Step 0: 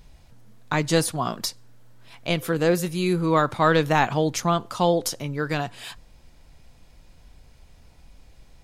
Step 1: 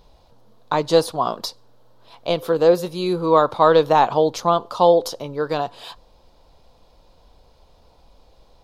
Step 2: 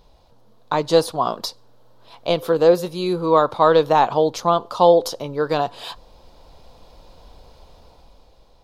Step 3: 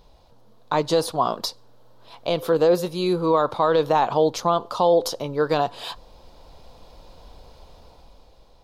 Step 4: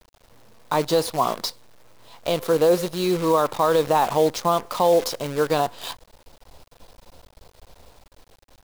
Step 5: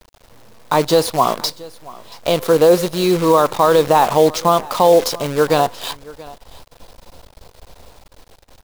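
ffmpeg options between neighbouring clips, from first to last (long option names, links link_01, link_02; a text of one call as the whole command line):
ffmpeg -i in.wav -af "equalizer=frequency=125:width_type=o:width=1:gain=-3,equalizer=frequency=500:width_type=o:width=1:gain=10,equalizer=frequency=1000:width_type=o:width=1:gain=10,equalizer=frequency=2000:width_type=o:width=1:gain=-8,equalizer=frequency=4000:width_type=o:width=1:gain=9,equalizer=frequency=8000:width_type=o:width=1:gain=-6,volume=-3.5dB" out.wav
ffmpeg -i in.wav -af "dynaudnorm=framelen=130:gausssize=13:maxgain=8dB,volume=-1dB" out.wav
ffmpeg -i in.wav -af "alimiter=limit=-9dB:level=0:latency=1:release=50" out.wav
ffmpeg -i in.wav -af "acrusher=bits=6:dc=4:mix=0:aa=0.000001" out.wav
ffmpeg -i in.wav -af "aecho=1:1:680:0.0891,volume=6.5dB" out.wav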